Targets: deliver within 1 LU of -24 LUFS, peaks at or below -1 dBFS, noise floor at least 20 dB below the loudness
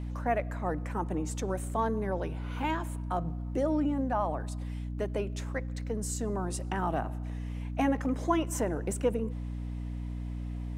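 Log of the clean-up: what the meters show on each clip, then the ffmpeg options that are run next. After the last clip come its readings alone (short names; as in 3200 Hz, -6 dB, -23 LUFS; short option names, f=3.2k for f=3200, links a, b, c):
hum 60 Hz; harmonics up to 300 Hz; hum level -33 dBFS; loudness -33.0 LUFS; peak -15.0 dBFS; loudness target -24.0 LUFS
-> -af "bandreject=f=60:t=h:w=6,bandreject=f=120:t=h:w=6,bandreject=f=180:t=h:w=6,bandreject=f=240:t=h:w=6,bandreject=f=300:t=h:w=6"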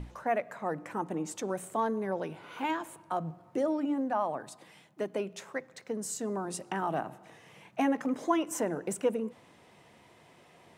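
hum none; loudness -33.5 LUFS; peak -15.0 dBFS; loudness target -24.0 LUFS
-> -af "volume=9.5dB"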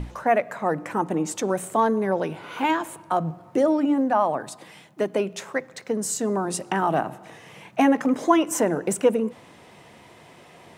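loudness -24.0 LUFS; peak -5.5 dBFS; noise floor -50 dBFS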